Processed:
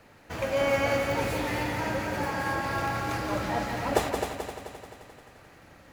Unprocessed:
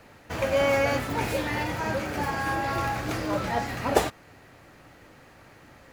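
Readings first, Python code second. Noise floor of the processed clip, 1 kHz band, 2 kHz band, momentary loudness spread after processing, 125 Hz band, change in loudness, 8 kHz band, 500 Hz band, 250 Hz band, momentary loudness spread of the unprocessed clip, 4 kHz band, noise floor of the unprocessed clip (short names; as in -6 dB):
-54 dBFS, -1.5 dB, -1.0 dB, 16 LU, -1.5 dB, -2.0 dB, -1.5 dB, -1.5 dB, -1.5 dB, 6 LU, -1.5 dB, -53 dBFS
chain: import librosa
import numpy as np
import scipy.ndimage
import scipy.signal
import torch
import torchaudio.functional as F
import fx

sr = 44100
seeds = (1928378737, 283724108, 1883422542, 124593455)

y = fx.echo_heads(x, sr, ms=87, heads='second and third', feedback_pct=58, wet_db=-6.5)
y = y * librosa.db_to_amplitude(-3.5)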